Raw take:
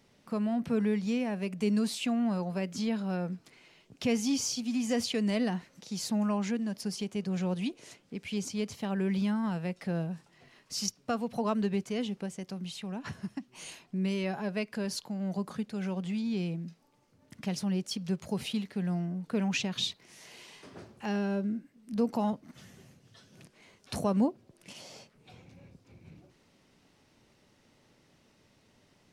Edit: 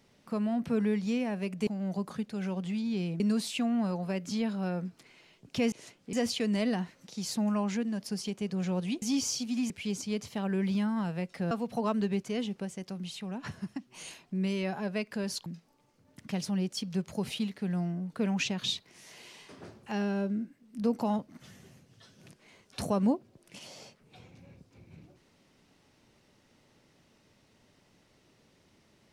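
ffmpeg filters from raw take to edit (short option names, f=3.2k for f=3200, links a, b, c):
-filter_complex "[0:a]asplit=9[a][b][c][d][e][f][g][h][i];[a]atrim=end=1.672[j];[b]atrim=start=15.068:end=16.602[k];[c]atrim=start=1.668:end=4.192[l];[d]atrim=start=7.758:end=8.172[m];[e]atrim=start=4.868:end=7.762[n];[f]atrim=start=4.188:end=4.872[o];[g]atrim=start=8.168:end=9.982[p];[h]atrim=start=11.118:end=15.072[q];[i]atrim=start=16.598[r];[j][k]acrossfade=d=0.004:c1=hsin:c2=hsin[s];[s][l]acrossfade=d=0.004:c1=hsin:c2=hsin[t];[t][m]acrossfade=d=0.004:c1=hsin:c2=hsin[u];[u][n]acrossfade=d=0.004:c1=hsin:c2=hsin[v];[v][o]acrossfade=d=0.004:c1=hsin:c2=hsin[w];[w][p]acrossfade=d=0.004:c1=hsin:c2=hsin[x];[x][q]acrossfade=d=0.004:c1=hsin:c2=hsin[y];[y][r]acrossfade=d=0.004:c1=hsin:c2=hsin"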